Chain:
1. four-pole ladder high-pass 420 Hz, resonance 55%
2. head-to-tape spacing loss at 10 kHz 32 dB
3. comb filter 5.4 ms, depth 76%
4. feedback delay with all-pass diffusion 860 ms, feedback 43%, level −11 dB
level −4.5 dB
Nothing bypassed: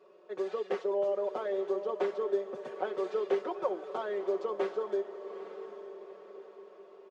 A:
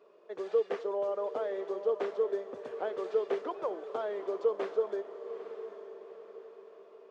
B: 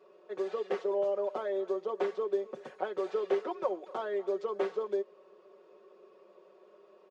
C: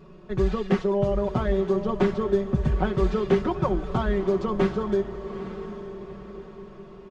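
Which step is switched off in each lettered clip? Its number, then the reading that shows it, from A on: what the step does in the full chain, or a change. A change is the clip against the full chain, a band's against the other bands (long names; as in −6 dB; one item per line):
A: 3, 250 Hz band −2.5 dB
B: 4, echo-to-direct ratio −10.0 dB to none audible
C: 1, 250 Hz band +7.5 dB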